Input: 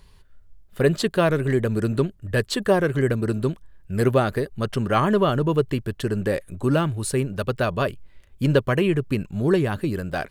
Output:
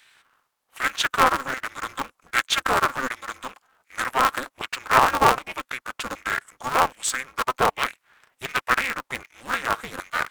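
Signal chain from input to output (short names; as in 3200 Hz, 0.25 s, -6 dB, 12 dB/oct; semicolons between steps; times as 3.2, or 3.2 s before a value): LFO high-pass saw down 1.3 Hz 900–2300 Hz; formant shift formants -3 st; polarity switched at an audio rate 130 Hz; gain +4 dB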